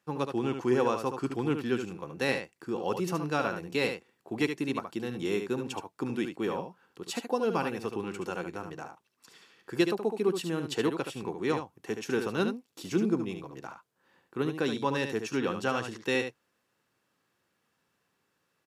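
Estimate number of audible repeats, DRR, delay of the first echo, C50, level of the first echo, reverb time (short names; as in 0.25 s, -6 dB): 1, none, 73 ms, none, -7.5 dB, none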